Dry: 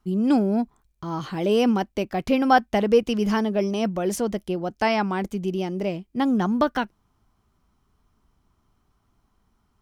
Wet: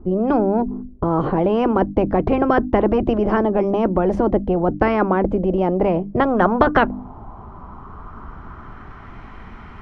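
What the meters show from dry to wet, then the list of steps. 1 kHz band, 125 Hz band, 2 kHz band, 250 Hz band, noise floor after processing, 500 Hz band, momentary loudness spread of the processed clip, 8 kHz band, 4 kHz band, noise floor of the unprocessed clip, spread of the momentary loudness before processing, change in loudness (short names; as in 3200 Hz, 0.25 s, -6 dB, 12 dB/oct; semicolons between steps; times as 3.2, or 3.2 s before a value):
+5.0 dB, +6.5 dB, +3.5 dB, +4.0 dB, -39 dBFS, +6.0 dB, 21 LU, under -20 dB, -5.5 dB, -69 dBFS, 10 LU, +5.0 dB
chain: notches 50/100/150/200/250/300 Hz; low-pass sweep 370 Hz -> 2100 Hz, 5.37–9.25; spectral compressor 4:1; gain +4.5 dB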